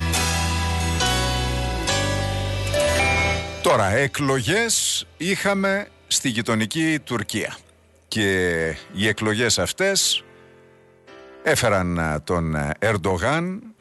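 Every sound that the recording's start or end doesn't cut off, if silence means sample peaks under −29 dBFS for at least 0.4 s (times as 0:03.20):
0:08.12–0:10.20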